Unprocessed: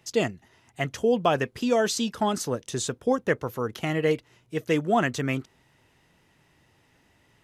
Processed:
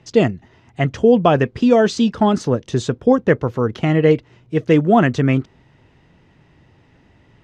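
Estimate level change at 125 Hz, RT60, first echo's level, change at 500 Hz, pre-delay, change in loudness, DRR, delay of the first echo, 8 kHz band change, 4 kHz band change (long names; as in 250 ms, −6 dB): +13.0 dB, no reverb audible, no echo audible, +9.5 dB, no reverb audible, +10.0 dB, no reverb audible, no echo audible, −3.5 dB, +3.0 dB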